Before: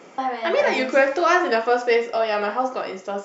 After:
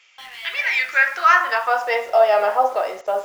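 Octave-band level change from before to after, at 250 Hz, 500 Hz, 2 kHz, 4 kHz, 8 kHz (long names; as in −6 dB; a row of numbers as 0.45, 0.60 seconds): below −15 dB, −0.5 dB, +5.5 dB, +1.5 dB, can't be measured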